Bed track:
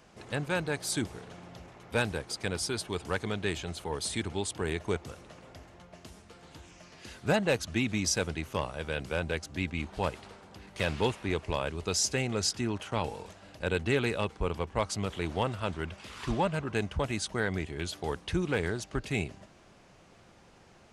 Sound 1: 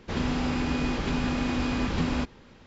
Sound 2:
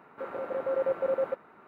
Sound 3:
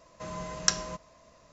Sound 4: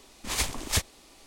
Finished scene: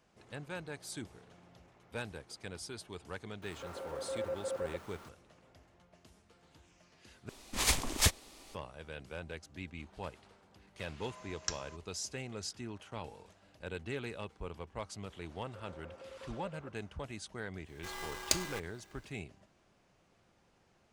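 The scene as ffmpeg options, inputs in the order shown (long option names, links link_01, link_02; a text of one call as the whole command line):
ffmpeg -i bed.wav -i cue0.wav -i cue1.wav -i cue2.wav -i cue3.wav -filter_complex "[2:a]asplit=2[link_01][link_02];[3:a]asplit=2[link_03][link_04];[0:a]volume=-12dB[link_05];[link_01]aeval=exprs='val(0)+0.5*0.01*sgn(val(0))':channel_layout=same[link_06];[link_03]highpass=frequency=700:poles=1[link_07];[link_02]acompressor=threshold=-35dB:ratio=6:attack=3.2:release=140:knee=1:detection=peak[link_08];[link_04]aeval=exprs='val(0)*sgn(sin(2*PI*1000*n/s))':channel_layout=same[link_09];[link_05]asplit=2[link_10][link_11];[link_10]atrim=end=7.294[link_12];[4:a]atrim=end=1.26,asetpts=PTS-STARTPTS,volume=-1dB[link_13];[link_11]atrim=start=8.546[link_14];[link_06]atrim=end=1.67,asetpts=PTS-STARTPTS,volume=-10.5dB,afade=type=in:duration=0.004:curve=hsin,afade=type=out:start_time=1.666:duration=0.004:curve=hsin,adelay=3420[link_15];[link_07]atrim=end=1.52,asetpts=PTS-STARTPTS,volume=-12dB,afade=type=in:duration=0.004:curve=hsin,afade=type=out:start_time=1.516:duration=0.004:curve=hsin,adelay=10800[link_16];[link_08]atrim=end=1.67,asetpts=PTS-STARTPTS,volume=-13dB,afade=type=in:duration=0.004:curve=hsin,afade=type=out:start_time=1.666:duration=0.004:curve=hsin,adelay=15350[link_17];[link_09]atrim=end=1.52,asetpts=PTS-STARTPTS,volume=-5.5dB,afade=type=in:duration=0.1,afade=type=out:start_time=1.42:duration=0.1,adelay=17630[link_18];[link_12][link_13]acrossfade=duration=0.004:curve1=hsin:curve2=hsin[link_19];[link_19][link_14]acrossfade=duration=0.004:curve1=hsin:curve2=hsin[link_20];[link_20][link_15][link_16][link_17][link_18]amix=inputs=5:normalize=0" out.wav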